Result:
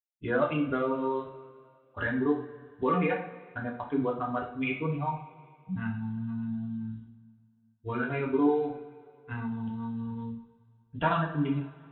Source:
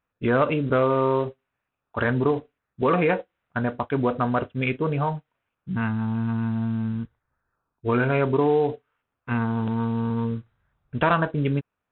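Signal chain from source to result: expander on every frequency bin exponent 1.5; reverb removal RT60 0.78 s; two-slope reverb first 0.5 s, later 2.3 s, from -18 dB, DRR -1.5 dB; trim -7 dB

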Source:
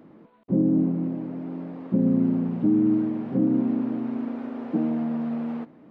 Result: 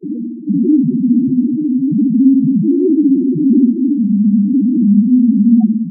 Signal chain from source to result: granulator, grains 20 per s, spray 21 ms, pitch spread up and down by 3 st; in parallel at -4 dB: fuzz box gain 53 dB, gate -57 dBFS; on the sum: flutter echo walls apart 10.2 m, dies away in 1.3 s; loudest bins only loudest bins 2; trim +5.5 dB

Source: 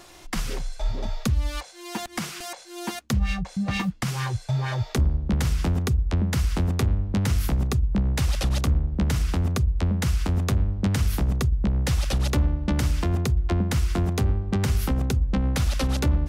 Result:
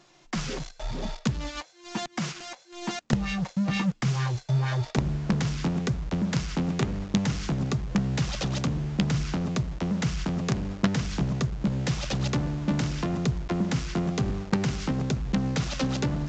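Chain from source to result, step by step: resonant low shelf 110 Hz -9 dB, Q 3; gate -33 dBFS, range -6 dB; in parallel at -7 dB: companded quantiser 2-bit; on the sum: flange 0.98 Hz, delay 0.2 ms, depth 3.8 ms, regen +84%; A-law 128 kbps 16 kHz

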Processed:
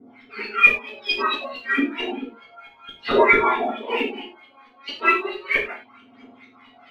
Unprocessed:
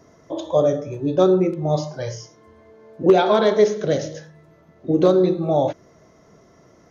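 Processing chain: spectrum inverted on a logarithmic axis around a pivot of 1.2 kHz; low-pass 4.5 kHz 12 dB/octave; low-pass that closes with the level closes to 1.5 kHz, closed at -21.5 dBFS; bass shelf 410 Hz -7 dB; LFO low-pass saw up 4.5 Hz 320–3200 Hz; phaser 0.32 Hz, delay 4 ms, feedback 63%; gated-style reverb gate 130 ms falling, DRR -7.5 dB; trim -1 dB

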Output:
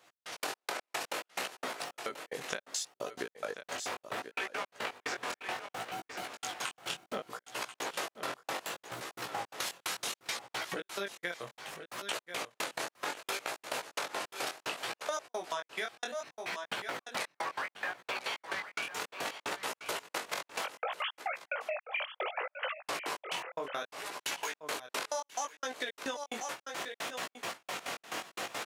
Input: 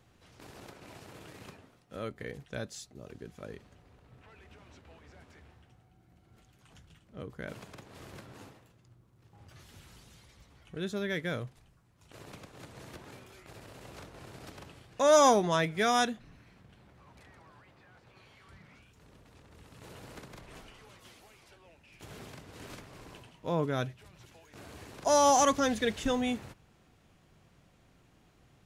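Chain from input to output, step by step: 20.64–22.88 s: formants replaced by sine waves; recorder AGC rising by 53 dB/s; trance gate "x..x.x.." 175 bpm -60 dB; high-pass 630 Hz 12 dB/octave; delay 1035 ms -15.5 dB; chorus 0.66 Hz, delay 15.5 ms, depth 7.6 ms; compression 6:1, threshold -42 dBFS, peak gain reduction 15.5 dB; trim +8 dB

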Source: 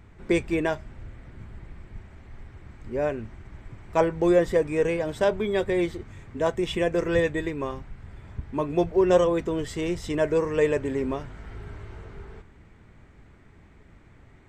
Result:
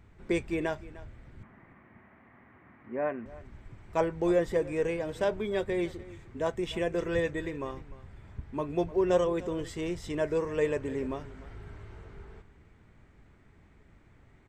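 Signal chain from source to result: 1.43–3.26 s: cabinet simulation 190–2500 Hz, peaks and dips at 240 Hz +6 dB, 420 Hz -3 dB, 700 Hz +4 dB, 1.1 kHz +7 dB, 1.9 kHz +6 dB; delay 301 ms -18.5 dB; trim -6 dB

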